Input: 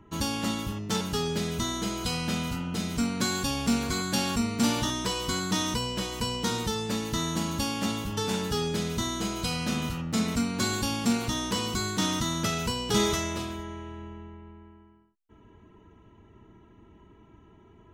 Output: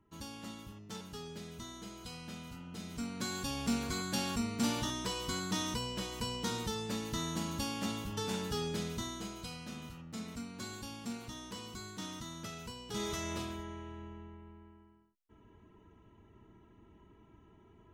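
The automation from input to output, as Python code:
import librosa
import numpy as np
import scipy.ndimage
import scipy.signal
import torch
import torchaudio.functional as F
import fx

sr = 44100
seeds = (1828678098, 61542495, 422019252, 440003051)

y = fx.gain(x, sr, db=fx.line((2.43, -16.5), (3.65, -7.5), (8.82, -7.5), (9.64, -16.0), (12.9, -16.0), (13.33, -6.0)))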